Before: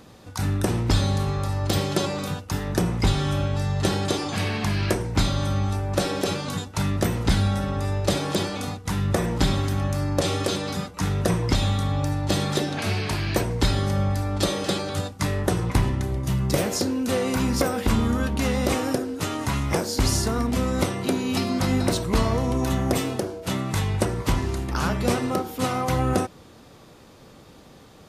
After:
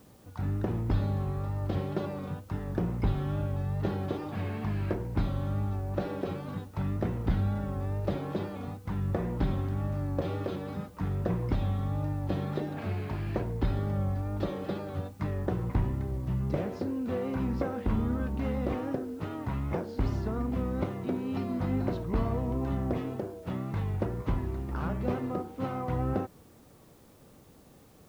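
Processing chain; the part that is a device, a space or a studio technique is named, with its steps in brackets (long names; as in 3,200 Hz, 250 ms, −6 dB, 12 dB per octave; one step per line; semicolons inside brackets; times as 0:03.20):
cassette deck with a dirty head (head-to-tape spacing loss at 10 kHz 44 dB; tape wow and flutter; white noise bed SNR 34 dB)
level −6 dB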